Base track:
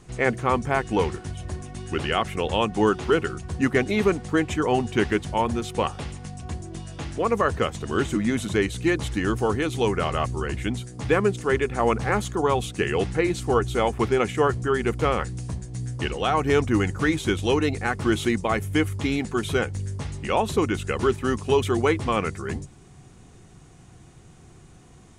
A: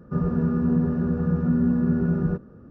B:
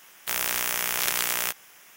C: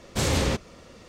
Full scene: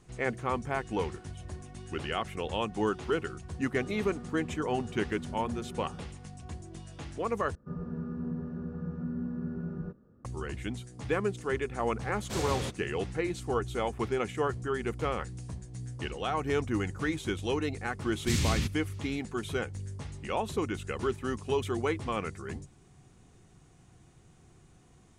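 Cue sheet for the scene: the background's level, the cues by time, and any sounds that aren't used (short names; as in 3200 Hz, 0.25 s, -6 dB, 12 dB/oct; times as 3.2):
base track -9 dB
3.69 add A -16 dB + low shelf 330 Hz -8.5 dB
7.55 replace with A -14 dB
12.14 add C -10 dB
18.11 add C -2.5 dB + EQ curve 170 Hz 0 dB, 370 Hz -9 dB, 540 Hz -22 dB, 2500 Hz -2 dB
not used: B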